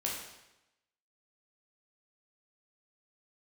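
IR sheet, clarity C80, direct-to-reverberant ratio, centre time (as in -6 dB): 5.0 dB, -3.5 dB, 52 ms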